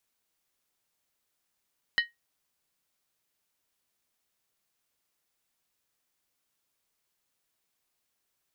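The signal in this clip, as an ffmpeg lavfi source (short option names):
-f lavfi -i "aevalsrc='0.126*pow(10,-3*t/0.17)*sin(2*PI*1880*t)+0.0668*pow(10,-3*t/0.135)*sin(2*PI*2996.7*t)+0.0355*pow(10,-3*t/0.116)*sin(2*PI*4015.7*t)+0.0188*pow(10,-3*t/0.112)*sin(2*PI*4316.5*t)+0.01*pow(10,-3*t/0.104)*sin(2*PI*4987.6*t)':d=0.63:s=44100"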